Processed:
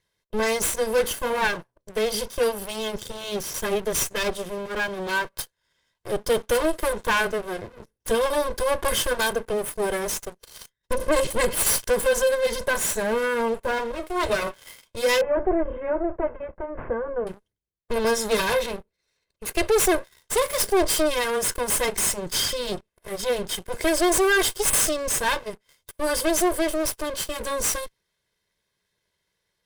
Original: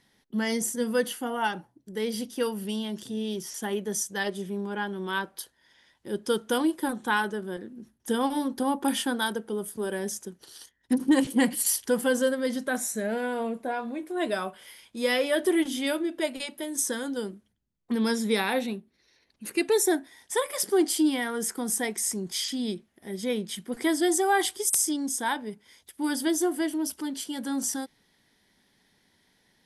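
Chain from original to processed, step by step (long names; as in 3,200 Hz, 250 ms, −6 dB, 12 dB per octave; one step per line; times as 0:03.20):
lower of the sound and its delayed copy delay 1.9 ms
leveller curve on the samples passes 3
0:15.21–0:17.27: Gaussian smoothing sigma 6.2 samples
level −2.5 dB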